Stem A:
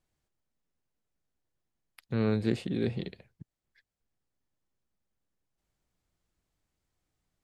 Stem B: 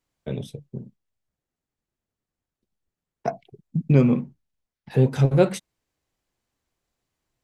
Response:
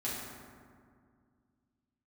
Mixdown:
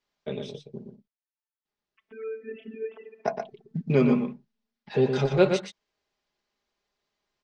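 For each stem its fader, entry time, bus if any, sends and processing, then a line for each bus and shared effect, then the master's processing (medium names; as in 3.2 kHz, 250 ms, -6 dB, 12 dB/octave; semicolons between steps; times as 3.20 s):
-4.0 dB, 0.00 s, send -17.5 dB, no echo send, formants replaced by sine waves; robot voice 222 Hz
-0.5 dB, 0.00 s, muted 0.96–1.65 s, no send, echo send -6.5 dB, tone controls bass -10 dB, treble +5 dB; comb 4.9 ms, depth 52%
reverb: on, RT60 2.1 s, pre-delay 4 ms
echo: delay 119 ms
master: low-pass 5.2 kHz 24 dB/octave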